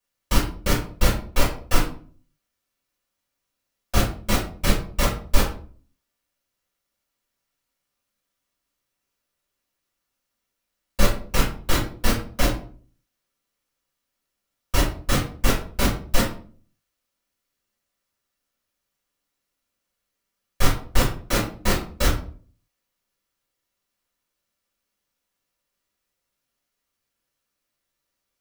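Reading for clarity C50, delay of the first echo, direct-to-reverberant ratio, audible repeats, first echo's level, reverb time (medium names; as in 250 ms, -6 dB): 7.0 dB, no echo, -7.5 dB, no echo, no echo, 0.45 s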